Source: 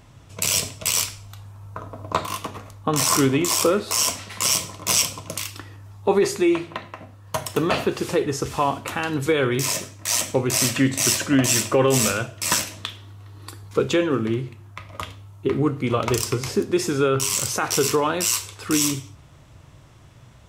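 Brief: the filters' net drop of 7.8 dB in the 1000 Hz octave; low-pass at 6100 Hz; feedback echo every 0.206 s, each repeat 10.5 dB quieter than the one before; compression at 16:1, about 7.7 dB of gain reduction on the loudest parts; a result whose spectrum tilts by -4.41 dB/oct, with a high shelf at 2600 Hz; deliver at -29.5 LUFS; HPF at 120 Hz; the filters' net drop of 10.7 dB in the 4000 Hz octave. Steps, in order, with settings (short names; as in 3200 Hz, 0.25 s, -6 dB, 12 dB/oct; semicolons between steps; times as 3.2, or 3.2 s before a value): HPF 120 Hz; LPF 6100 Hz; bell 1000 Hz -8.5 dB; high shelf 2600 Hz -4.5 dB; bell 4000 Hz -9 dB; compressor 16:1, threshold -23 dBFS; feedback echo 0.206 s, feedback 30%, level -10.5 dB; gain +0.5 dB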